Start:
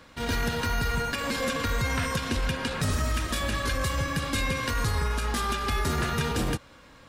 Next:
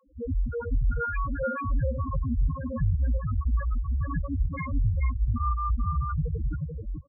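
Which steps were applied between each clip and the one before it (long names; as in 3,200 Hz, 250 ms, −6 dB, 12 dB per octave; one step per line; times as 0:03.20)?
fake sidechain pumping 94 BPM, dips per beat 1, −15 dB, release 121 ms
spectral peaks only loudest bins 1
single-tap delay 435 ms −4 dB
level +8.5 dB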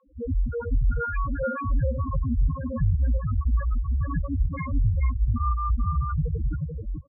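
high-frequency loss of the air 300 metres
level +2.5 dB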